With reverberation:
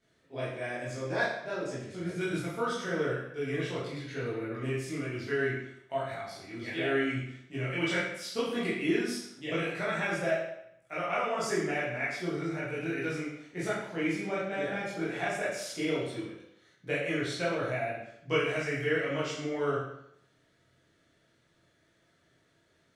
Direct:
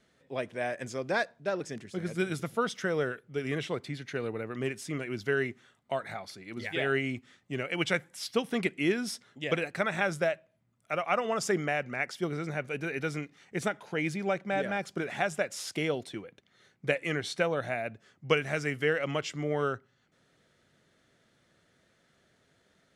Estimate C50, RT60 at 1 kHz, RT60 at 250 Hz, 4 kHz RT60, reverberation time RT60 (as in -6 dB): 1.0 dB, 0.75 s, 0.70 s, 0.70 s, 0.75 s